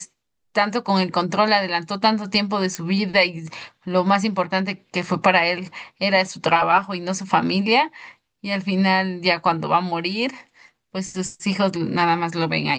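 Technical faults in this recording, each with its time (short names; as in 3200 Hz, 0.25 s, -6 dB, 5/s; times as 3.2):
2.75 pop -12 dBFS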